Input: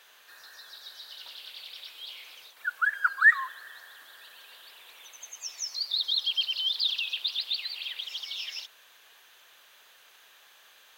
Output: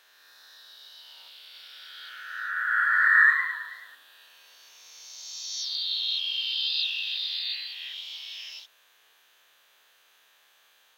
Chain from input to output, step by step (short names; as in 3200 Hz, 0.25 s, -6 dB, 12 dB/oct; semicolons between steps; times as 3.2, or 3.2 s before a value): spectral swells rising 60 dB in 2.02 s; dynamic EQ 2000 Hz, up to +4 dB, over -32 dBFS, Q 1.2; 1.43–3.95 warbling echo 0.108 s, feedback 55%, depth 104 cents, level -8.5 dB; gain -8.5 dB